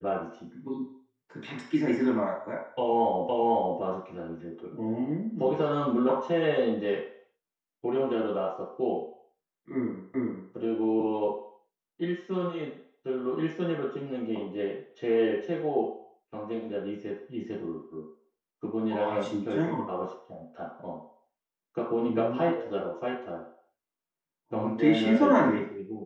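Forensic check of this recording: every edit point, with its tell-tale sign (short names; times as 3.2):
3.29 repeat of the last 0.5 s
10.14 repeat of the last 0.4 s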